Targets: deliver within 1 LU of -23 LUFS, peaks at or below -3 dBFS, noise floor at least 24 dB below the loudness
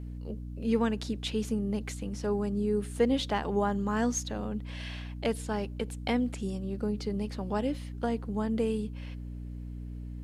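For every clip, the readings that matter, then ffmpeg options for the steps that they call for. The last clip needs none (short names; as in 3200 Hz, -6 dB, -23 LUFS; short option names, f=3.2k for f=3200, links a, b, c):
hum 60 Hz; harmonics up to 300 Hz; hum level -37 dBFS; loudness -32.0 LUFS; peak -14.5 dBFS; loudness target -23.0 LUFS
-> -af "bandreject=f=60:t=h:w=6,bandreject=f=120:t=h:w=6,bandreject=f=180:t=h:w=6,bandreject=f=240:t=h:w=6,bandreject=f=300:t=h:w=6"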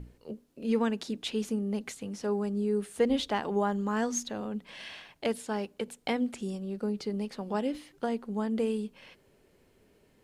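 hum none; loudness -32.0 LUFS; peak -15.0 dBFS; loudness target -23.0 LUFS
-> -af "volume=9dB"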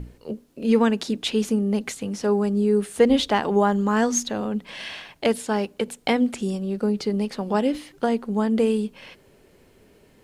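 loudness -23.0 LUFS; peak -6.0 dBFS; noise floor -56 dBFS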